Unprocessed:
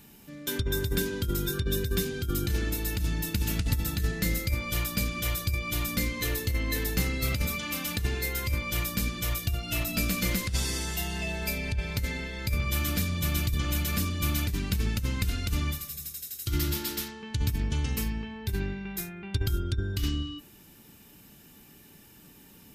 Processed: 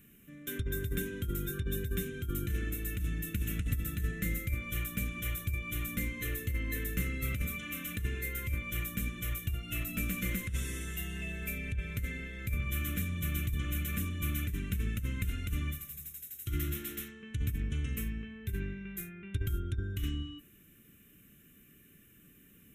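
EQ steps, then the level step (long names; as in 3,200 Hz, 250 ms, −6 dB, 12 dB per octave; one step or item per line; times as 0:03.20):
phaser with its sweep stopped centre 2,000 Hz, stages 4
−5.0 dB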